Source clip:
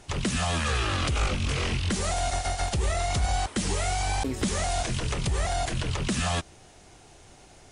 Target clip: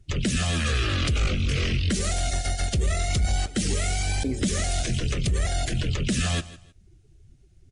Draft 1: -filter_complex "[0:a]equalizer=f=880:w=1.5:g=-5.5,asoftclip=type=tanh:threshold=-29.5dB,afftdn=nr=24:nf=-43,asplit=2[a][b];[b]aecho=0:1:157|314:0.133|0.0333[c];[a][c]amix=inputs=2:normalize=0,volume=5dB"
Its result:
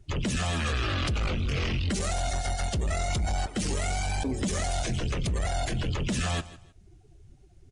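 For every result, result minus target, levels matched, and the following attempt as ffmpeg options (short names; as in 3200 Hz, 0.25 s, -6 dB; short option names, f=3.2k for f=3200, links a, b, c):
soft clip: distortion +10 dB; 1000 Hz band +5.0 dB
-filter_complex "[0:a]equalizer=f=880:w=1.5:g=-5.5,asoftclip=type=tanh:threshold=-21dB,afftdn=nr=24:nf=-43,asplit=2[a][b];[b]aecho=0:1:157|314:0.133|0.0333[c];[a][c]amix=inputs=2:normalize=0,volume=5dB"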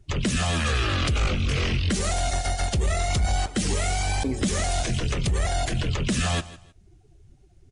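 1000 Hz band +5.0 dB
-filter_complex "[0:a]equalizer=f=880:w=1.5:g=-13.5,asoftclip=type=tanh:threshold=-21dB,afftdn=nr=24:nf=-43,asplit=2[a][b];[b]aecho=0:1:157|314:0.133|0.0333[c];[a][c]amix=inputs=2:normalize=0,volume=5dB"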